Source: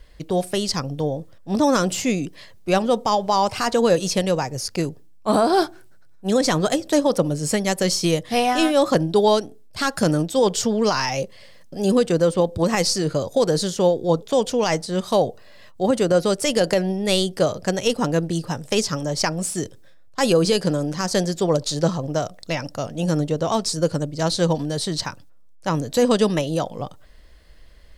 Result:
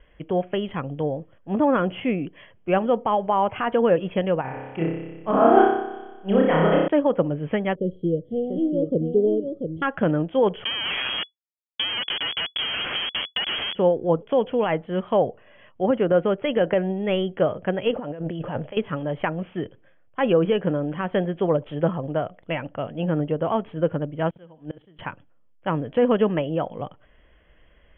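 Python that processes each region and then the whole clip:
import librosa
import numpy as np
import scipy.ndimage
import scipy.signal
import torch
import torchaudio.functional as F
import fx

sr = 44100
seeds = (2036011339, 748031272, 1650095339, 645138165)

y = fx.chain(x, sr, fx.room_flutter(wall_m=5.2, rt60_s=1.3),
    fx.upward_expand(threshold_db=-23.0, expansion=1.5), at=(4.41, 6.88))
y = fx.chain(y, sr, fx.ellip_bandstop(low_hz=480.0, high_hz=4700.0, order=3, stop_db=40),
    fx.echo_single(ms=689, db=-6.5), at=(7.75, 9.82))
y = fx.chain(y, sr, fx.schmitt(flips_db=-23.0),
    fx.freq_invert(carrier_hz=3400), at=(10.64, 13.75))
y = fx.chain(y, sr, fx.peak_eq(hz=610.0, db=7.0, octaves=0.66),
    fx.over_compress(threshold_db=-28.0, ratio=-1.0), at=(17.91, 18.77))
y = fx.chain(y, sr, fx.gate_flip(shuts_db=-17.0, range_db=-26),
    fx.room_flutter(wall_m=11.8, rt60_s=0.28), at=(24.29, 24.99))
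y = scipy.signal.sosfilt(scipy.signal.cheby1(10, 1.0, 3300.0, 'lowpass', fs=sr, output='sos'), y)
y = fx.env_lowpass_down(y, sr, base_hz=2500.0, full_db=-19.0)
y = fx.low_shelf(y, sr, hz=66.0, db=-9.0)
y = y * 10.0 ** (-1.0 / 20.0)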